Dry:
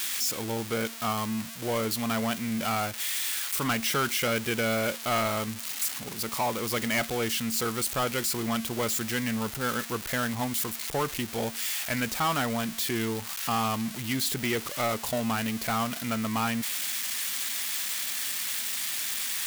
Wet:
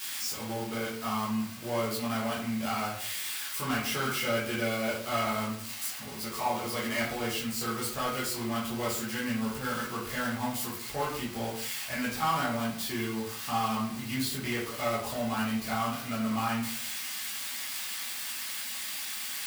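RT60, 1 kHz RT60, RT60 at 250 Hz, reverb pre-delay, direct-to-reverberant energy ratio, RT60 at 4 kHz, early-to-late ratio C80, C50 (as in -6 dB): 0.60 s, 0.55 s, 0.65 s, 9 ms, -8.0 dB, 0.35 s, 8.5 dB, 4.0 dB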